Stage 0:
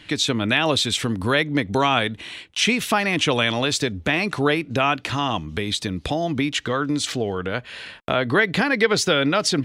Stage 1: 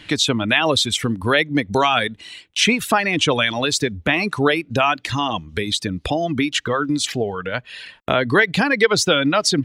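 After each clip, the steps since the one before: reverb removal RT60 1.6 s; trim +3.5 dB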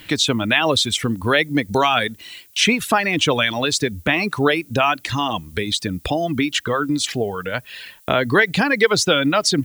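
added noise violet -51 dBFS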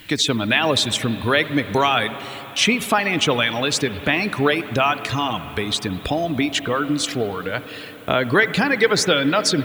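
reverberation RT60 4.8 s, pre-delay 61 ms, DRR 12 dB; trim -1 dB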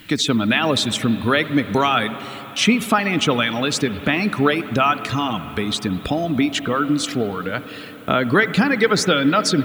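small resonant body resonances 210/1300 Hz, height 7 dB, ringing for 20 ms; trim -1.5 dB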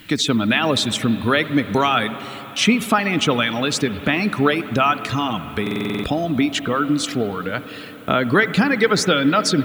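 buffer glitch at 5.62 s, samples 2048, times 8

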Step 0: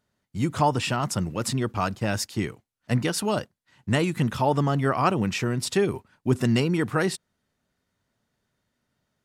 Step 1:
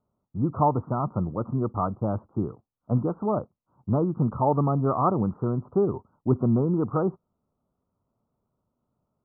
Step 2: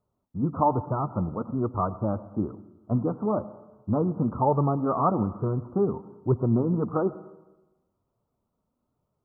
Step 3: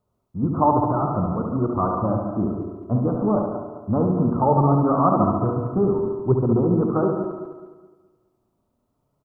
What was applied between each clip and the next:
steep low-pass 1.3 kHz 96 dB/octave
flange 1.1 Hz, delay 1.7 ms, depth 3 ms, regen -45%; plate-style reverb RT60 1.1 s, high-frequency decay 1×, pre-delay 80 ms, DRR 16 dB; trim +3.5 dB
backward echo that repeats 105 ms, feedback 59%, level -7 dB; on a send: feedback delay 71 ms, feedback 59%, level -5 dB; on the sum: trim +3 dB

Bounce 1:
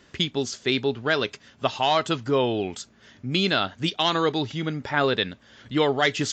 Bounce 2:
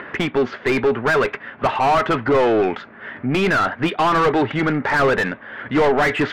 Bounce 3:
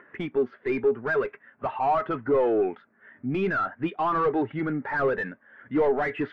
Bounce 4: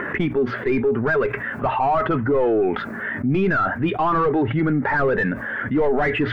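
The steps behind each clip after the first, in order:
upward compressor, threshold -45 dBFS; four-pole ladder low-pass 2.4 kHz, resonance 35%; overdrive pedal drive 30 dB, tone 1.2 kHz, clips at -12.5 dBFS; trim +5.5 dB
spectral contrast expander 1.5:1; trim -5.5 dB
bass shelf 160 Hz +11 dB; hum notches 60/120 Hz; level flattener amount 70%

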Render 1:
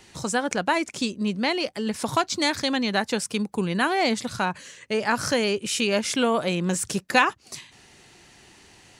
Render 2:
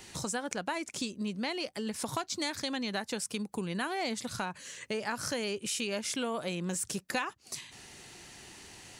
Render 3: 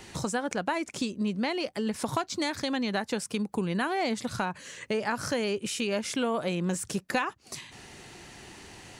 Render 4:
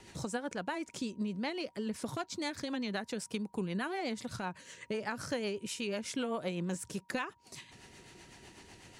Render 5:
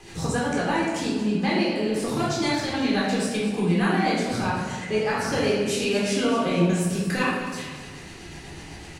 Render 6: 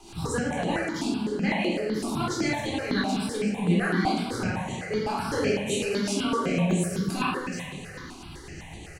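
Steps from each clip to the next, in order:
treble shelf 6.6 kHz +7 dB; compression 2.5:1, threshold -37 dBFS, peak gain reduction 16 dB
treble shelf 3 kHz -8 dB; trim +6 dB
rotary cabinet horn 8 Hz; whistle 950 Hz -62 dBFS; trim -5 dB
on a send: feedback delay 230 ms, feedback 44%, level -12.5 dB; on the sum: simulated room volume 560 m³, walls mixed, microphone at 3.8 m; trim +4 dB
delay 758 ms -16.5 dB; stepped phaser 7.9 Hz 490–5100 Hz

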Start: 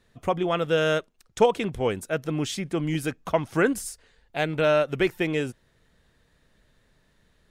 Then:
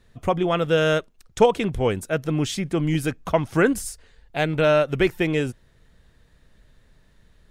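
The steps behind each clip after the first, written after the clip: bass shelf 110 Hz +9 dB; trim +2.5 dB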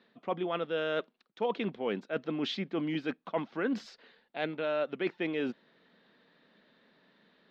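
elliptic band-pass 210–4100 Hz, stop band 40 dB; reverse; compression 4:1, threshold -31 dBFS, peak gain reduction 17 dB; reverse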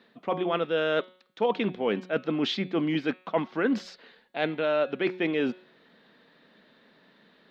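de-hum 183.8 Hz, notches 25; trim +6 dB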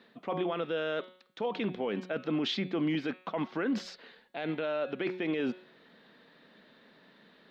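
peak limiter -23.5 dBFS, peak gain reduction 11.5 dB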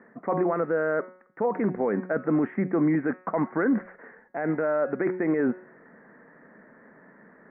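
steep low-pass 2 kHz 72 dB/octave; trim +7.5 dB

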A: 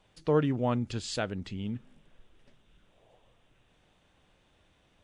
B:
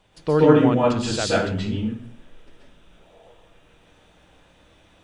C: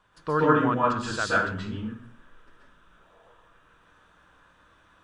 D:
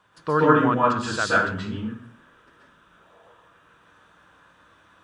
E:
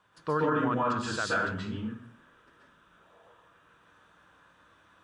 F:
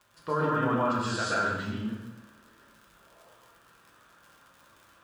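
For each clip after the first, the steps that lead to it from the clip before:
plate-style reverb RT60 0.54 s, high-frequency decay 0.75×, pre-delay 115 ms, DRR -6 dB; trim +5 dB
high-order bell 1.3 kHz +12.5 dB 1 oct; trim -8 dB
high-pass 83 Hz 12 dB/octave; trim +3.5 dB
peak limiter -13.5 dBFS, peak gain reduction 11 dB; trim -5 dB
crackle 79 per s -43 dBFS; two-slope reverb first 0.8 s, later 2.8 s, from -24 dB, DRR -0.5 dB; trim -2 dB

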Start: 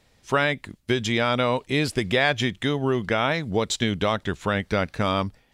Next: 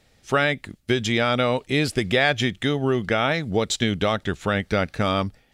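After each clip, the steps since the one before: band-stop 1 kHz, Q 7; trim +1.5 dB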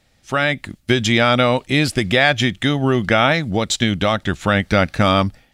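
peaking EQ 430 Hz -8.5 dB 0.26 oct; level rider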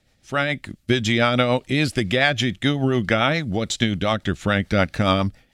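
rotary cabinet horn 7 Hz; trim -1.5 dB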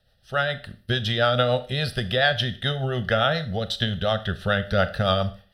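static phaser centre 1.5 kHz, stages 8; Schroeder reverb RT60 0.41 s, combs from 25 ms, DRR 12 dB

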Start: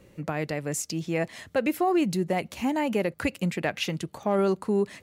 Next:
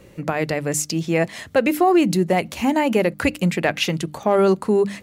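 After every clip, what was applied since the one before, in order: hum notches 50/100/150/200/250/300 Hz; trim +8 dB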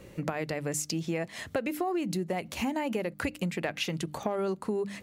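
compression 6:1, threshold -26 dBFS, peak gain reduction 13.5 dB; trim -2.5 dB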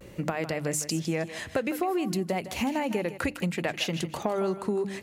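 vibrato 0.57 Hz 42 cents; thinning echo 157 ms, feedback 29%, high-pass 420 Hz, level -11 dB; trim +2.5 dB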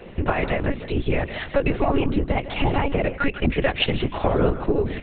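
whisper effect; monotone LPC vocoder at 8 kHz 280 Hz; trim +7.5 dB

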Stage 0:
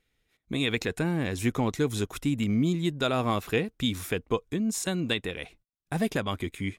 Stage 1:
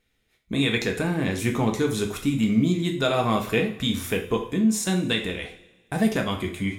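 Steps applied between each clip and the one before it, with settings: two-slope reverb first 0.43 s, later 1.6 s, from -19 dB, DRR 2 dB; trim +2 dB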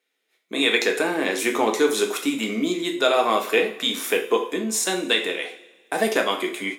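high-pass 330 Hz 24 dB/octave; level rider gain up to 9.5 dB; trim -2.5 dB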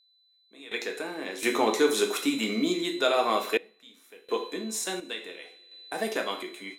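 whistle 4 kHz -37 dBFS; random-step tremolo 1.4 Hz, depth 95%; trim -3 dB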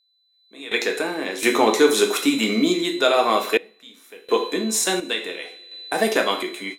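level rider gain up to 13 dB; trim -2 dB

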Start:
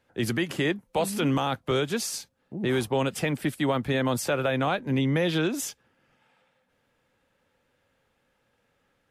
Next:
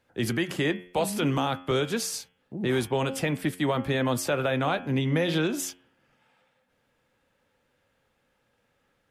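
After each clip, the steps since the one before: de-hum 89.7 Hz, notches 38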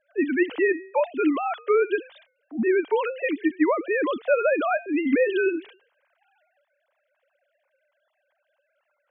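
formants replaced by sine waves; trim +3.5 dB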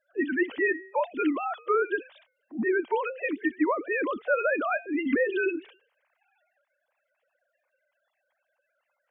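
coarse spectral quantiser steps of 30 dB; trim -3.5 dB

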